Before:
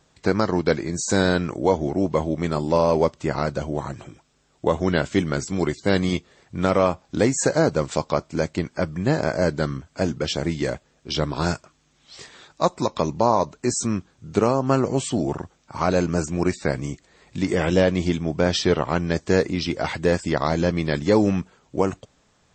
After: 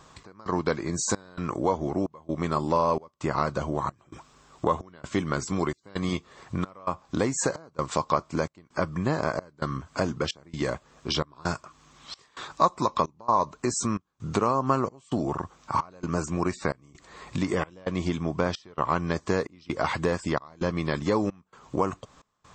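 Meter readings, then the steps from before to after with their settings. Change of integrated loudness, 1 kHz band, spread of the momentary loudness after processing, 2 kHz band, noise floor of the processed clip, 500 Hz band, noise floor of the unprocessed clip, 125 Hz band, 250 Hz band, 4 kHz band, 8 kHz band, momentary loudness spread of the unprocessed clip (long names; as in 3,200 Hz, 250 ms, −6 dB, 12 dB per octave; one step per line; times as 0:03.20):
−6.0 dB, −1.0 dB, 8 LU, −6.0 dB, −63 dBFS, −7.5 dB, −63 dBFS, −6.5 dB, −6.5 dB, −6.5 dB, −4.0 dB, 9 LU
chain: downward compressor 2.5 to 1, threshold −36 dBFS, peak gain reduction 15.5 dB
parametric band 1,100 Hz +12 dB 0.45 octaves
gate pattern "xx..xxxx" 131 BPM −24 dB
level +6.5 dB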